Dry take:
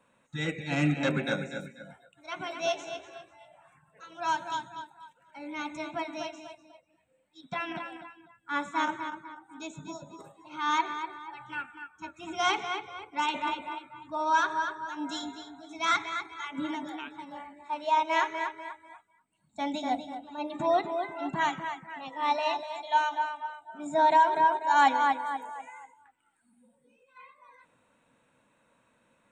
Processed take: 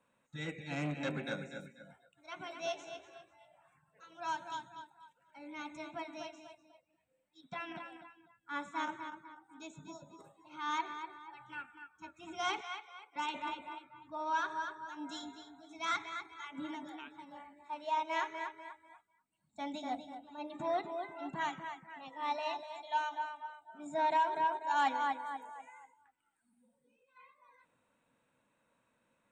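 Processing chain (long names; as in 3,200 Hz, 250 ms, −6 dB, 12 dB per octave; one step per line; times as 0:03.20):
0:12.61–0:13.16: high-pass filter 790 Hz 12 dB per octave
0:13.84–0:14.45: high-frequency loss of the air 56 metres
saturating transformer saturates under 790 Hz
level −8.5 dB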